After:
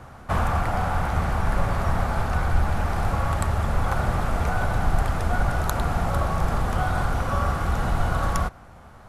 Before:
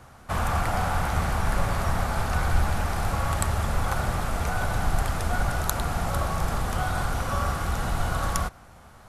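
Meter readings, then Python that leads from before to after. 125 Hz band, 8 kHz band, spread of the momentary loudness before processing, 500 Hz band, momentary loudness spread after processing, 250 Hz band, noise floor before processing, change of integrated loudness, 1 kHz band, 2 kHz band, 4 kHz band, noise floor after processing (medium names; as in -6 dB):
+3.0 dB, -5.5 dB, 2 LU, +2.5 dB, 1 LU, +3.0 dB, -49 dBFS, +2.0 dB, +2.0 dB, +1.0 dB, -2.5 dB, -46 dBFS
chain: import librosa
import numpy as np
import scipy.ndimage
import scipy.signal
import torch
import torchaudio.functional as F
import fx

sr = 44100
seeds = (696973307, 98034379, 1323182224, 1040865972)

y = fx.high_shelf(x, sr, hz=3000.0, db=-9.5)
y = fx.rider(y, sr, range_db=10, speed_s=0.5)
y = y * librosa.db_to_amplitude(3.0)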